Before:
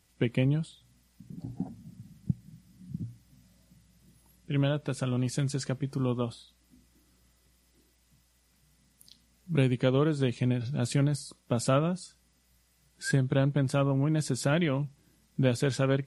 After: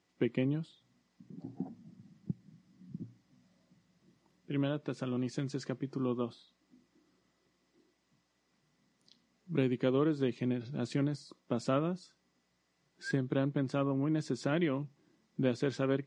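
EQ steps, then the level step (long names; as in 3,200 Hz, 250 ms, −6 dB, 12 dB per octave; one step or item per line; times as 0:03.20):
dynamic equaliser 730 Hz, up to −4 dB, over −41 dBFS, Q 0.86
loudspeaker in its box 270–6,600 Hz, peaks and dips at 350 Hz +4 dB, 730 Hz +3 dB, 1,100 Hz +6 dB, 1,900 Hz +4 dB
low-shelf EQ 460 Hz +11.5 dB
−8.0 dB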